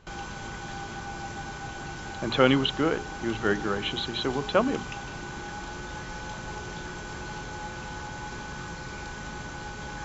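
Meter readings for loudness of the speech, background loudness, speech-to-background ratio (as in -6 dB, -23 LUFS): -27.0 LUFS, -37.5 LUFS, 10.5 dB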